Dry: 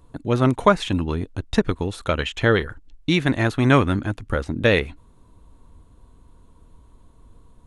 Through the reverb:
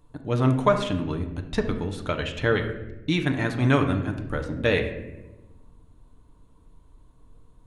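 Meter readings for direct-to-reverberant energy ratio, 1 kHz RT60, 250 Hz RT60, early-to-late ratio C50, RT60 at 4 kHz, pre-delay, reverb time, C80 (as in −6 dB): 4.5 dB, 0.85 s, 1.5 s, 8.5 dB, 0.65 s, 7 ms, 1.1 s, 11.5 dB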